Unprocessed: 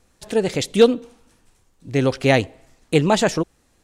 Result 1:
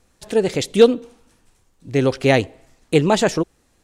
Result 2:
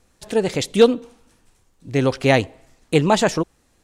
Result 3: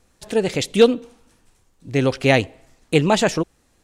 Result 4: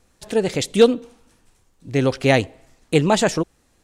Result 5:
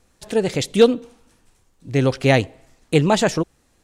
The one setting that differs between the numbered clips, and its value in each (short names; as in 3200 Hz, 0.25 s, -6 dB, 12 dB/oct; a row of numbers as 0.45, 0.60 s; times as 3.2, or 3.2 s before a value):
dynamic EQ, frequency: 390, 1000, 2600, 8200, 130 Hz